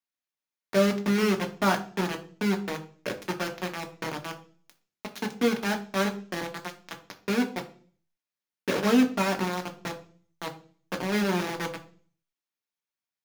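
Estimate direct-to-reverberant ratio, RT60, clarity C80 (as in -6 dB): 4.0 dB, 0.45 s, 18.0 dB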